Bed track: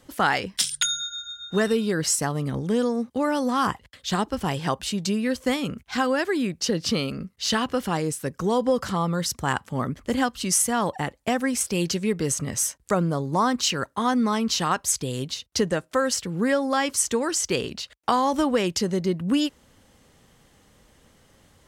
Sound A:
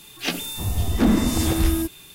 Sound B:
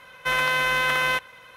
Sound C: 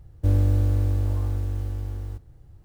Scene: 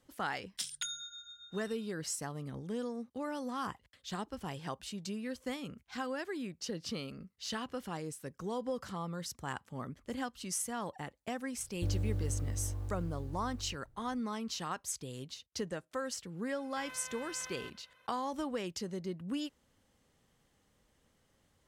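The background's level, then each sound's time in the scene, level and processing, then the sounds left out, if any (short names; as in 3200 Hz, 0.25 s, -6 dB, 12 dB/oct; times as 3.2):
bed track -15 dB
11.58 add C -14 dB
16.51 add B -18 dB + limiter -19.5 dBFS
not used: A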